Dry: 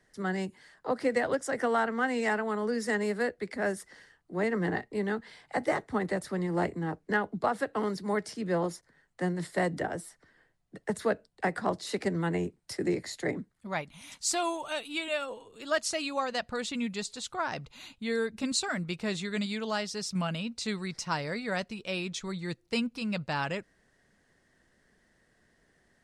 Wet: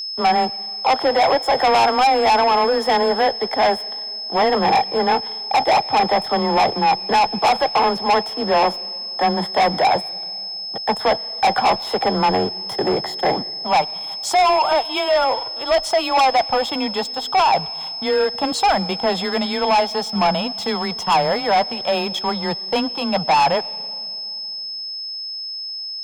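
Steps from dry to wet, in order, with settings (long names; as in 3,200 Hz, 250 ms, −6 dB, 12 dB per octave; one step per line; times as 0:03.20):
octave-band graphic EQ 125/250/500/1,000/4,000/8,000 Hz +3/−4/+4/+9/−6/−7 dB
leveller curve on the samples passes 3
frequency shifter +18 Hz
hollow resonant body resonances 790/3,300 Hz, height 17 dB, ringing for 20 ms
soft clipping −10.5 dBFS, distortion −7 dB
steady tone 5,200 Hz −24 dBFS
on a send: convolution reverb RT60 2.5 s, pre-delay 97 ms, DRR 21.5 dB
on the sum: level −1.5 dB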